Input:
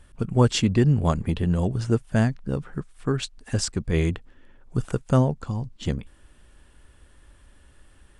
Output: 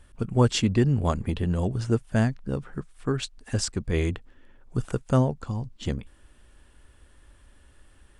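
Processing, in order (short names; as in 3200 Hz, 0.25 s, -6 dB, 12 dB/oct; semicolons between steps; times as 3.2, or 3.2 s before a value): bell 160 Hz -6.5 dB 0.2 oct; gain -1.5 dB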